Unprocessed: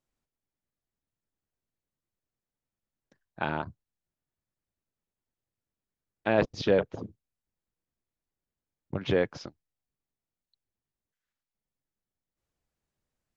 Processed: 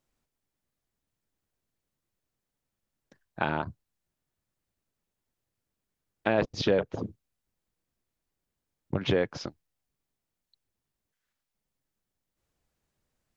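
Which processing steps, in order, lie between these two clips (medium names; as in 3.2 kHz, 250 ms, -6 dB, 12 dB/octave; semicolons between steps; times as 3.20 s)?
compression 2:1, threshold -31 dBFS, peak gain reduction 7.5 dB; trim +5.5 dB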